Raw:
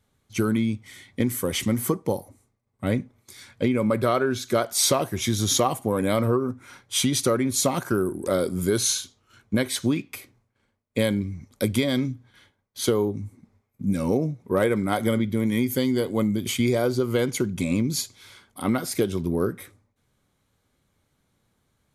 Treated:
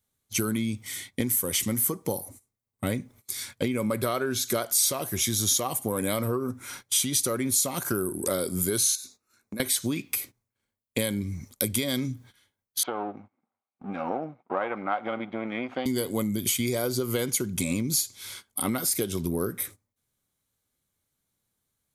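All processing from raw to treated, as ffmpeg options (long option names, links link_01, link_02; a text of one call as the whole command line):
ffmpeg -i in.wav -filter_complex "[0:a]asettb=1/sr,asplit=3[link_01][link_02][link_03];[link_01]atrim=end=8.954[link_04];[link_02]atrim=start=8.95:end=9.6,asetpts=PTS-STARTPTS,afade=type=in:duration=0.004:curve=qsin,afade=type=out:start_time=0.646:duration=0.004:curve=qsin,lowshelf=frequency=170:width_type=q:width=1.5:gain=-7,acompressor=threshold=-35dB:ratio=12:attack=3.2:release=140:knee=1:detection=peak,asuperstop=centerf=3100:order=4:qfactor=3.5[link_05];[link_03]atrim=start=9.596[link_06];[link_04][link_05]acrossfade=duration=0.004:curve1=hsin:curve2=qsin[link_07];[link_07][link_06]acrossfade=duration=0.004:curve1=qsin:curve2=hsin,asettb=1/sr,asplit=3[link_08][link_09][link_10];[link_08]atrim=end=12.834[link_11];[link_09]atrim=start=12.83:end=15.86,asetpts=PTS-STARTPTS,afade=type=in:duration=0.004:curve=qsin,afade=type=out:start_time=3.026:duration=0.004:curve=qsin,aeval=exprs='if(lt(val(0),0),0.447*val(0),val(0))':channel_layout=same,highpass=380,equalizer=frequency=420:width_type=q:width=4:gain=-9,equalizer=frequency=760:width_type=q:width=4:gain=8,equalizer=frequency=1300:width_type=q:width=4:gain=5,equalizer=frequency=1900:width_type=q:width=4:gain=-6,lowpass=frequency=2400:width=0.5412,lowpass=frequency=2400:width=1.3066[link_12];[link_10]atrim=start=15.856[link_13];[link_11][link_12]acrossfade=duration=0.004:curve1=hsin:curve2=qsin[link_14];[link_14][link_13]acrossfade=duration=0.004:curve1=qsin:curve2=hsin,agate=range=-16dB:threshold=-49dB:ratio=16:detection=peak,aemphasis=mode=production:type=75kf,acompressor=threshold=-28dB:ratio=3,volume=2dB" out.wav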